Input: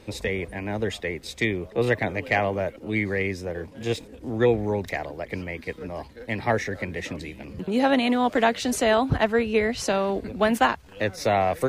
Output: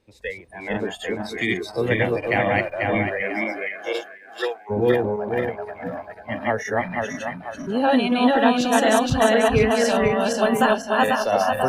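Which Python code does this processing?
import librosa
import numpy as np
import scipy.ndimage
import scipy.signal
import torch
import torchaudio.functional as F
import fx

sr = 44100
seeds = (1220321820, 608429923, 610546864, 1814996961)

y = fx.reverse_delay_fb(x, sr, ms=246, feedback_pct=70, wet_db=0.0)
y = fx.highpass(y, sr, hz=fx.line((3.22, 190.0), (4.69, 800.0)), slope=12, at=(3.22, 4.69), fade=0.02)
y = fx.noise_reduce_blind(y, sr, reduce_db=18)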